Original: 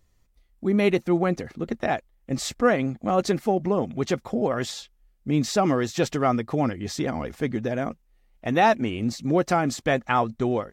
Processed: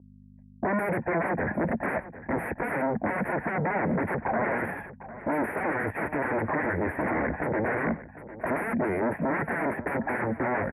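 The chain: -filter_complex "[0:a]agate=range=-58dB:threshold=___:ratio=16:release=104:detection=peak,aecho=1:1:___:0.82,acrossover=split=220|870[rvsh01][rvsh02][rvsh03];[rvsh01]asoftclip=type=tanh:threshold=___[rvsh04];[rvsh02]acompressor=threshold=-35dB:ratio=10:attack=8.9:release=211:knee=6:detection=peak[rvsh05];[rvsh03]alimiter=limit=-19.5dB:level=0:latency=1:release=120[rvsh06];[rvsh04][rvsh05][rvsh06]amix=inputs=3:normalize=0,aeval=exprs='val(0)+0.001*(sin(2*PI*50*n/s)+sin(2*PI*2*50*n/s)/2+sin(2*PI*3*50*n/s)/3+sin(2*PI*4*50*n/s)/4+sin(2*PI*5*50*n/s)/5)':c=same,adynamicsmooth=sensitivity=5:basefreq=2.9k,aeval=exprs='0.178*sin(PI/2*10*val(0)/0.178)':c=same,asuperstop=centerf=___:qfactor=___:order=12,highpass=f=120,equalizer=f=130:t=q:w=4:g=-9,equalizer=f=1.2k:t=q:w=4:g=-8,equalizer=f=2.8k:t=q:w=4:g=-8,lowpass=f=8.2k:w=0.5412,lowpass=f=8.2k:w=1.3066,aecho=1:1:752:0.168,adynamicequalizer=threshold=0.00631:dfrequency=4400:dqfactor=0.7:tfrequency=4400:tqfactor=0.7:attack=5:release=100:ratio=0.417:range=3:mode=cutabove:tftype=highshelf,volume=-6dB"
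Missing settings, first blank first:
-55dB, 1.2, -30.5dB, 5100, 0.6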